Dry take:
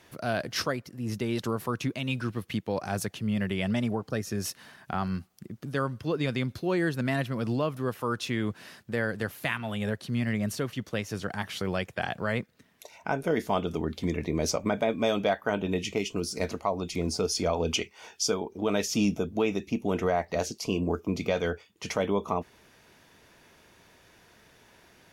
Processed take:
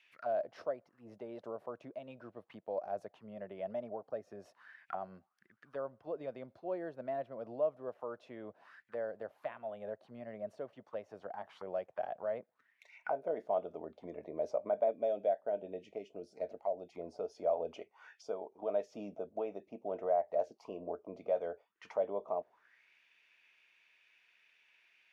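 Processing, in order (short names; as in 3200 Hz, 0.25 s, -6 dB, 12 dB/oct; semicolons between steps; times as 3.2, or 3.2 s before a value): 14.91–16.93 bell 1100 Hz -14.5 dB 0.6 oct; auto-wah 620–2700 Hz, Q 5.1, down, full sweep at -29 dBFS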